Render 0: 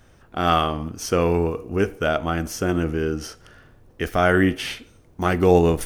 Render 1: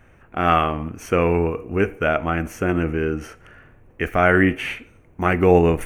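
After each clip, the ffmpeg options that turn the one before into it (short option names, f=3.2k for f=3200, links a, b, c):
-af "highshelf=f=3k:t=q:w=3:g=-7,bandreject=f=5.1k:w=5.4,volume=1dB"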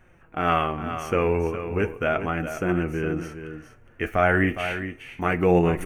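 -af "flanger=delay=5.3:depth=4.6:regen=50:speed=0.35:shape=triangular,aecho=1:1:412:0.316"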